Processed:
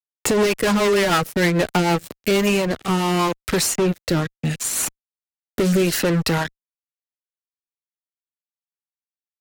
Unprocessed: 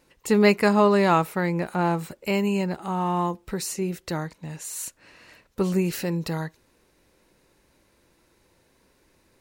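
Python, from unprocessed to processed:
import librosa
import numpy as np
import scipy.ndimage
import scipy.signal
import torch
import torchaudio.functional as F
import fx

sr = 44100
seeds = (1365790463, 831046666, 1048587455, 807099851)

y = fx.dereverb_blind(x, sr, rt60_s=1.2)
y = fx.dynamic_eq(y, sr, hz=210.0, q=3.1, threshold_db=-37.0, ratio=4.0, max_db=-6)
y = fx.fuzz(y, sr, gain_db=33.0, gate_db=-40.0)
y = fx.rotary_switch(y, sr, hz=6.7, then_hz=0.75, switch_at_s=1.7)
y = fx.band_squash(y, sr, depth_pct=40)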